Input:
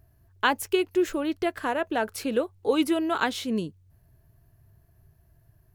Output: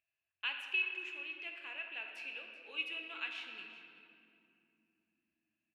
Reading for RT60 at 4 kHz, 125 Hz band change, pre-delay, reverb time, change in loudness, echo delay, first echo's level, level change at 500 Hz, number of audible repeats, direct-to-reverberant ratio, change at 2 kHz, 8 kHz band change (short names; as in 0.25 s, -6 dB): 1.6 s, under -35 dB, 3 ms, 2.7 s, -13.0 dB, 0.381 s, -16.5 dB, -31.5 dB, 1, 2.0 dB, -7.0 dB, under -25 dB